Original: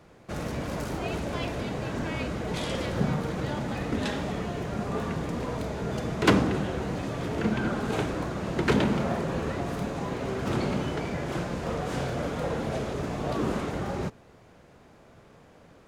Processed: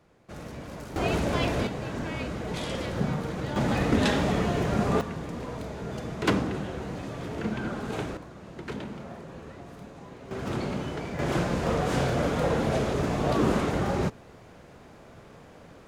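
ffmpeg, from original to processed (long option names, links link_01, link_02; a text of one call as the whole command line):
ffmpeg -i in.wav -af "asetnsamples=nb_out_samples=441:pad=0,asendcmd='0.96 volume volume 5dB;1.67 volume volume -1.5dB;3.56 volume volume 6dB;5.01 volume volume -4dB;8.17 volume volume -13dB;10.31 volume volume -3dB;11.19 volume volume 4.5dB',volume=-7.5dB" out.wav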